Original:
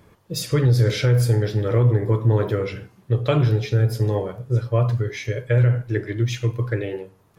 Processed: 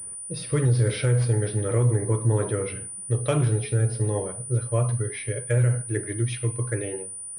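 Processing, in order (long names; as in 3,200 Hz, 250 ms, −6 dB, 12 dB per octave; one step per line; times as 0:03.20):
low-pass that shuts in the quiet parts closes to 3,000 Hz, open at −15.5 dBFS
switching amplifier with a slow clock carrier 9,400 Hz
level −4 dB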